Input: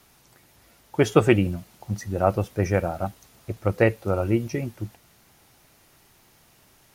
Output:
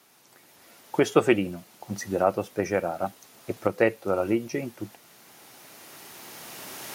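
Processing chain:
camcorder AGC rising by 8.4 dB per second
high-pass filter 230 Hz 12 dB per octave
level −1.5 dB

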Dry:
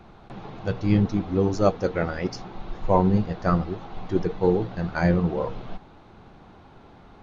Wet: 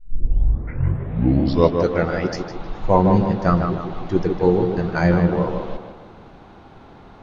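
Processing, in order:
turntable start at the beginning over 1.95 s
tape delay 155 ms, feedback 50%, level −4 dB, low-pass 2,200 Hz
level +4 dB

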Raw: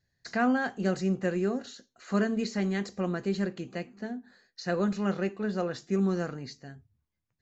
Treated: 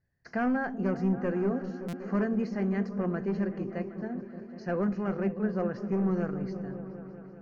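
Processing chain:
gain into a clipping stage and back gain 23 dB
moving average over 12 samples
on a send: echo whose low-pass opens from repeat to repeat 192 ms, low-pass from 200 Hz, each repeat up 1 octave, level −6 dB
on the sum: buffer that repeats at 0:01.88, samples 256, times 8

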